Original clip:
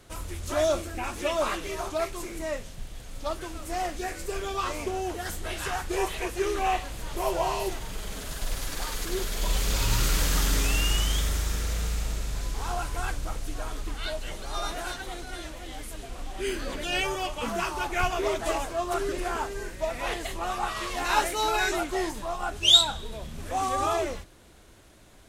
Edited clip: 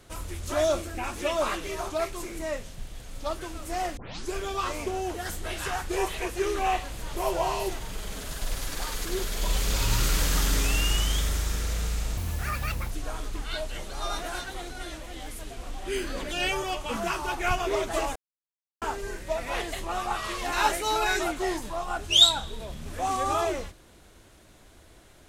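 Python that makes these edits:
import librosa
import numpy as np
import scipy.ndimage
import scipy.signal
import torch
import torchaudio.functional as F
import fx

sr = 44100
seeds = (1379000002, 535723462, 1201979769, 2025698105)

y = fx.edit(x, sr, fx.tape_start(start_s=3.97, length_s=0.36),
    fx.speed_span(start_s=12.17, length_s=1.26, speed=1.71),
    fx.silence(start_s=18.68, length_s=0.66), tone=tone)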